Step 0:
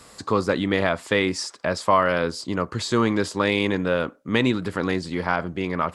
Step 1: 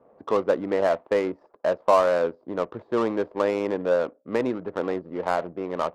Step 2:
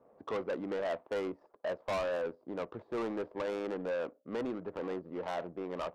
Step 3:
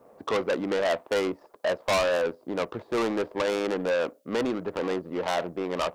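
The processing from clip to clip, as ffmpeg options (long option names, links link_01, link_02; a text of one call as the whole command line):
ffmpeg -i in.wav -af "bandpass=frequency=610:width_type=q:width=1.6:csg=0,adynamicsmooth=sensitivity=4.5:basefreq=580,volume=3.5dB" out.wav
ffmpeg -i in.wav -af "asoftclip=type=tanh:threshold=-24dB,volume=-6.5dB" out.wav
ffmpeg -i in.wav -af "highshelf=frequency=2700:gain=11,volume=8.5dB" out.wav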